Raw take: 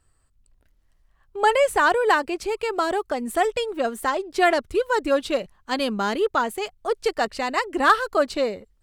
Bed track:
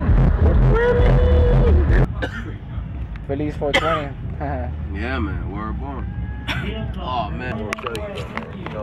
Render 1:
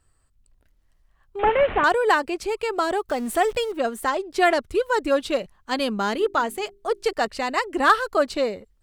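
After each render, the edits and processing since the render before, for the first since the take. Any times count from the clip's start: 1.39–1.84 s: one-bit delta coder 16 kbps, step -25 dBFS; 3.09–3.72 s: jump at every zero crossing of -36 dBFS; 6.15–7.13 s: hum notches 50/100/150/200/250/300/350/400 Hz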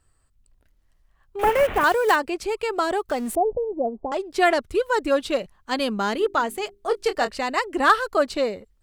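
1.39–2.17 s: block-companded coder 5-bit; 3.35–4.12 s: steep low-pass 830 Hz 48 dB/octave; 6.72–7.36 s: doubling 24 ms -9 dB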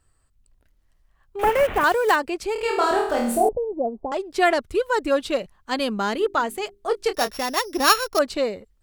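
2.53–3.49 s: flutter echo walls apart 4.4 m, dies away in 0.61 s; 7.14–8.19 s: sorted samples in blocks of 8 samples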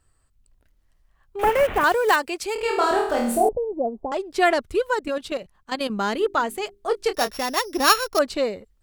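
2.12–2.56 s: tilt EQ +2 dB/octave; 4.94–5.90 s: level held to a coarse grid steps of 12 dB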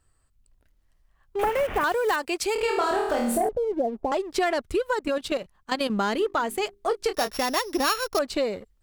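waveshaping leveller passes 1; compression 5:1, threshold -22 dBFS, peak gain reduction 11 dB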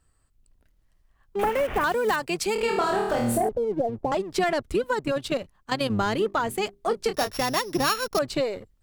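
octave divider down 1 oct, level -5 dB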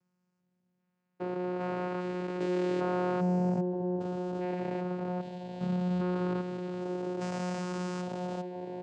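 spectrogram pixelated in time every 400 ms; vocoder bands 8, saw 180 Hz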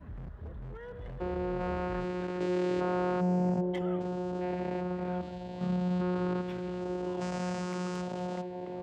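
add bed track -28 dB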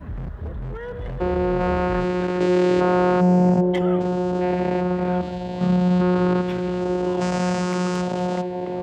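trim +12 dB

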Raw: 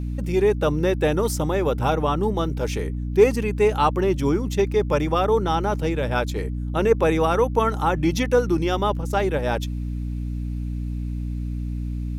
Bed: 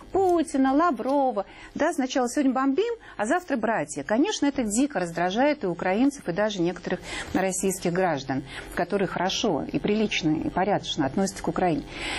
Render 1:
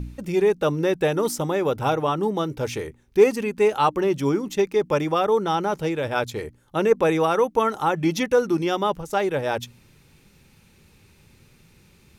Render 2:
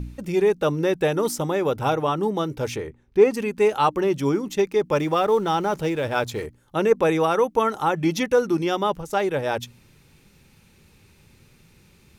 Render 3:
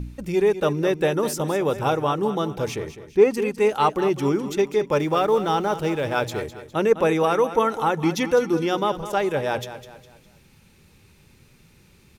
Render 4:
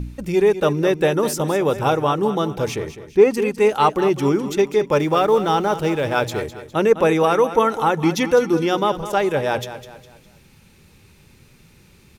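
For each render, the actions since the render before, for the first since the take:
de-hum 60 Hz, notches 5
2.76–3.34 s: low-pass 2.3 kHz 6 dB/octave; 4.95–6.46 s: companding laws mixed up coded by mu
feedback delay 204 ms, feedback 39%, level -12.5 dB
trim +3.5 dB; peak limiter -3 dBFS, peak gain reduction 1.5 dB

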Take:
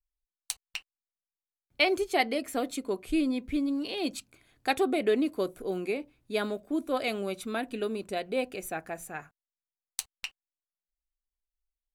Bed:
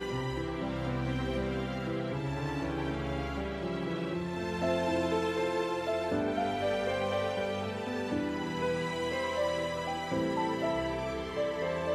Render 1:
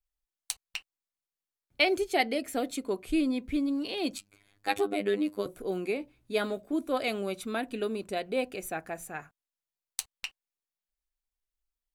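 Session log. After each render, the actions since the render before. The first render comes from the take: 1.82–2.75 s: peaking EQ 1.1 kHz -7 dB 0.36 oct; 4.18–5.46 s: robot voice 101 Hz; 5.99–6.73 s: doubling 16 ms -9 dB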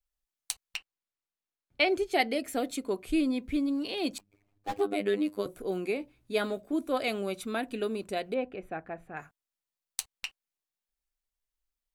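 0.77–2.13 s: treble shelf 6.2 kHz -10 dB; 4.18–4.81 s: median filter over 25 samples; 8.34–9.17 s: distance through air 500 m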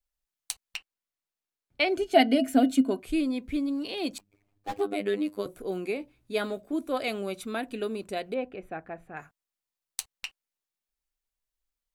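1.97–3.00 s: small resonant body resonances 260/660/1500/2900 Hz, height 17 dB, ringing for 90 ms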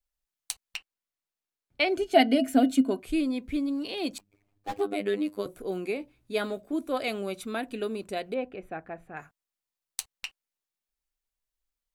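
no audible change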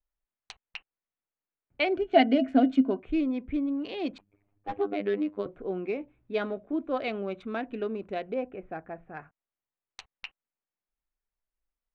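local Wiener filter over 9 samples; Bessel low-pass 2.9 kHz, order 4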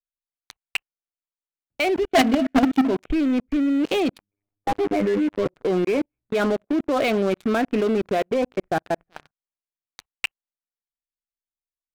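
level held to a coarse grid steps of 19 dB; waveshaping leveller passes 5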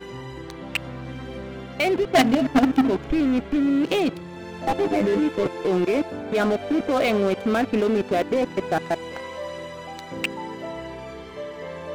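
add bed -2 dB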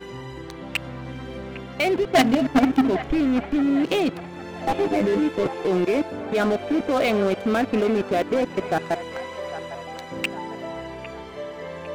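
feedback echo behind a band-pass 804 ms, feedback 47%, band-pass 1.2 kHz, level -11.5 dB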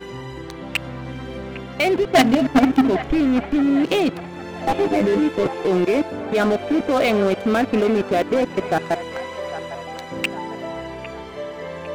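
trim +3 dB

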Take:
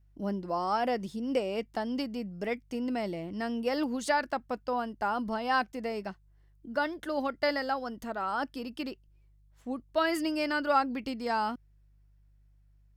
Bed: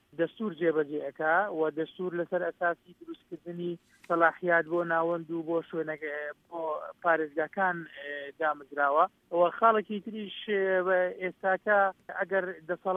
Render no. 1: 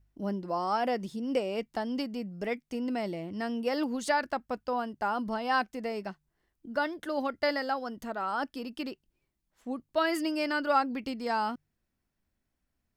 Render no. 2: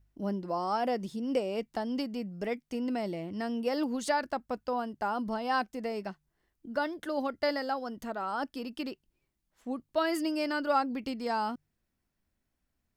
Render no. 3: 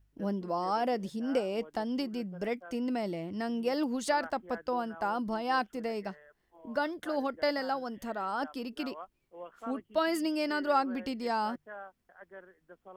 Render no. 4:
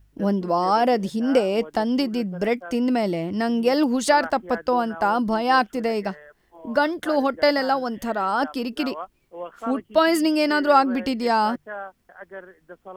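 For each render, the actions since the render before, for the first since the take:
de-hum 50 Hz, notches 3
dynamic bell 2 kHz, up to -4 dB, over -41 dBFS, Q 0.75
add bed -21 dB
trim +11 dB

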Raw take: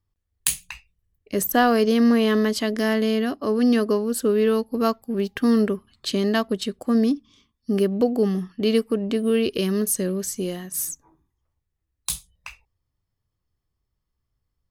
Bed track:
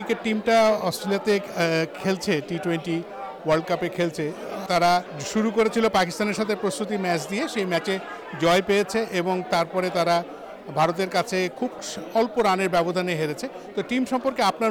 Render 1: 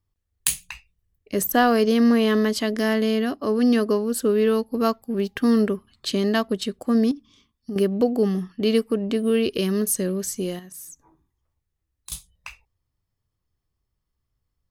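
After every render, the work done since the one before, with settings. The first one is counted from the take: 7.11–7.76 s: compression, threshold -27 dBFS; 10.59–12.12 s: compression 2.5:1, threshold -43 dBFS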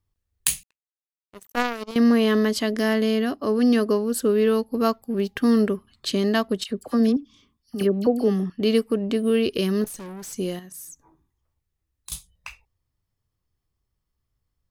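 0.63–1.96 s: power-law waveshaper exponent 3; 6.64–8.50 s: phase dispersion lows, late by 54 ms, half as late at 1.6 kHz; 9.84–10.33 s: valve stage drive 35 dB, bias 0.55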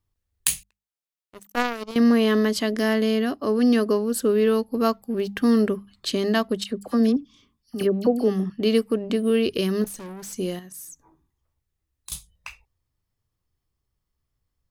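hum notches 50/100/150/200 Hz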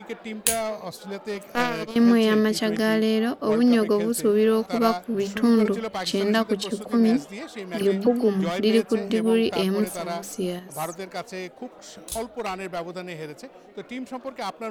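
add bed track -10 dB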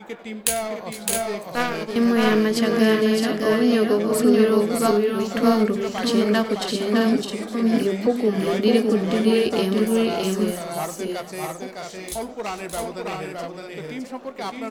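doubling 19 ms -12.5 dB; multi-tap echo 95/457/611/664 ms -17.5/-19/-3.5/-5 dB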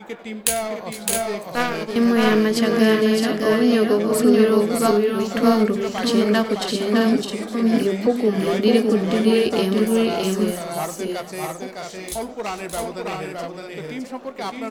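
trim +1.5 dB

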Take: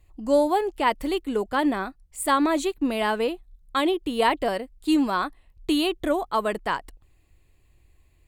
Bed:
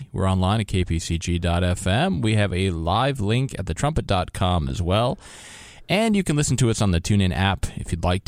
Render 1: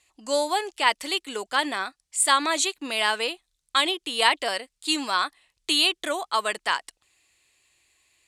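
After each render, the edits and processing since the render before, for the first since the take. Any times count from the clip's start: frequency weighting ITU-R 468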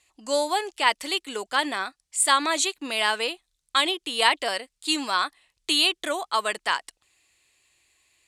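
no audible change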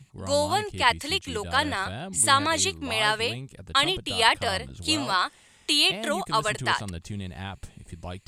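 add bed -15.5 dB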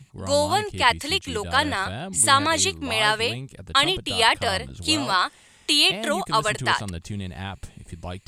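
trim +3 dB; peak limiter -3 dBFS, peak gain reduction 2.5 dB

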